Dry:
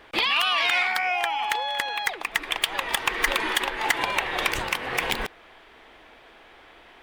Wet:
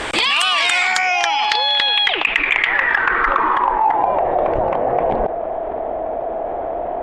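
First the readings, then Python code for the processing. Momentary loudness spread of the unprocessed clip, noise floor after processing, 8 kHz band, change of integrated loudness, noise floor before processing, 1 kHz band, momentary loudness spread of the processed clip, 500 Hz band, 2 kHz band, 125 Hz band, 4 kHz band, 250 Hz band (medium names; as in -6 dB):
7 LU, -25 dBFS, no reading, +7.5 dB, -52 dBFS, +10.5 dB, 10 LU, +15.0 dB, +7.5 dB, +8.5 dB, +8.0 dB, +9.0 dB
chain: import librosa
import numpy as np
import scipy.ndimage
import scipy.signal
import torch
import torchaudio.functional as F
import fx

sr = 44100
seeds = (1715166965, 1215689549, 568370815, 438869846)

p1 = fx.filter_sweep_lowpass(x, sr, from_hz=8100.0, to_hz=660.0, start_s=0.76, end_s=4.24, q=6.1)
p2 = 10.0 ** (-9.5 / 20.0) * np.tanh(p1 / 10.0 ** (-9.5 / 20.0))
p3 = p1 + (p2 * librosa.db_to_amplitude(-9.0))
p4 = fx.env_flatten(p3, sr, amount_pct=70)
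y = p4 * librosa.db_to_amplitude(-4.0)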